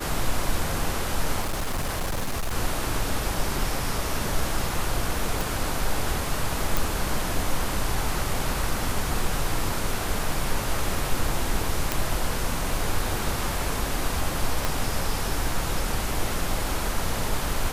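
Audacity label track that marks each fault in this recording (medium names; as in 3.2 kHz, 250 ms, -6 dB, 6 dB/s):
1.400000	2.540000	clipped -23 dBFS
5.410000	5.410000	pop
6.770000	6.770000	pop
11.920000	11.920000	pop
14.650000	14.650000	pop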